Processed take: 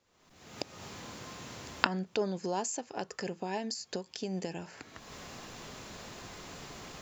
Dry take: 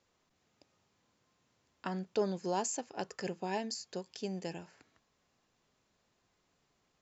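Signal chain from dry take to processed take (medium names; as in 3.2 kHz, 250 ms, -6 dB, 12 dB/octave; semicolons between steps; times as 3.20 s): recorder AGC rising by 49 dB/s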